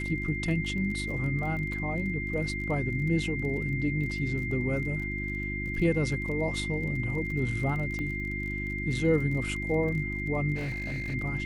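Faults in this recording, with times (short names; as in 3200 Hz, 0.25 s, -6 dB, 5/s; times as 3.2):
crackle 26/s -37 dBFS
hum 50 Hz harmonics 7 -35 dBFS
tone 2100 Hz -34 dBFS
7.99 pop -24 dBFS
10.55–11.15 clipped -29.5 dBFS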